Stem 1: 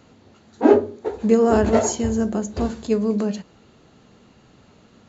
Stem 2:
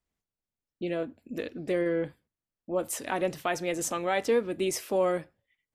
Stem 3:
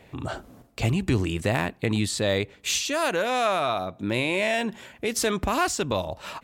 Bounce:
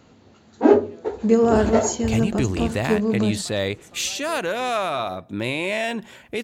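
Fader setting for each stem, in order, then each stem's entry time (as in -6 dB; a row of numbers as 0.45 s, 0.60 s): -0.5 dB, -18.5 dB, 0.0 dB; 0.00 s, 0.00 s, 1.30 s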